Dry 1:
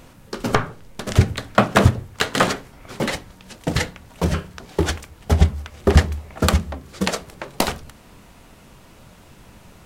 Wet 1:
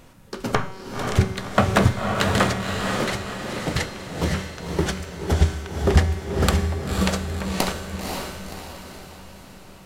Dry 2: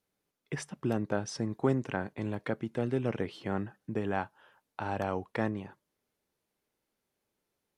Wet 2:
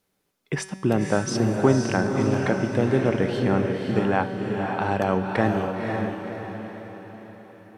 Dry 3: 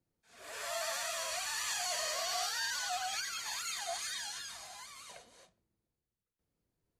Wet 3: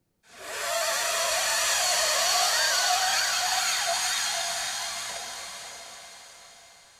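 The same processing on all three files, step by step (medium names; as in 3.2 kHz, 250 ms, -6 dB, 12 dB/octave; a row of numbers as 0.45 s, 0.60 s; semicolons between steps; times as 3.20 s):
feedback comb 190 Hz, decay 1.3 s, mix 70%; on a send: echo that smears into a reverb 529 ms, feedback 48%, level -3.5 dB; on the sum: normalise loudness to -24 LUFS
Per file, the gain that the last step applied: +6.5 dB, +19.0 dB, +20.0 dB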